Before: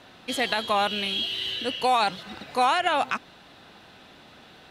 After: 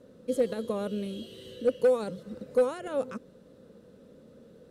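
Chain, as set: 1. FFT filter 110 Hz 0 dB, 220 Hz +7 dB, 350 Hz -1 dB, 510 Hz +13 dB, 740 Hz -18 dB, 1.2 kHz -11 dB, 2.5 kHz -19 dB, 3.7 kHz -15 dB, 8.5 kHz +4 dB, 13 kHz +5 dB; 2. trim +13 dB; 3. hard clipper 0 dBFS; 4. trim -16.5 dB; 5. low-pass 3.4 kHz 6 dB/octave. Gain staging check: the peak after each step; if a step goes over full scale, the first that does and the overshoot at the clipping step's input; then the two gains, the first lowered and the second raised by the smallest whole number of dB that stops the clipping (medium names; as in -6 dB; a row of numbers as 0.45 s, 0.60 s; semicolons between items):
-8.5 dBFS, +4.5 dBFS, 0.0 dBFS, -16.5 dBFS, -16.5 dBFS; step 2, 4.5 dB; step 2 +8 dB, step 4 -11.5 dB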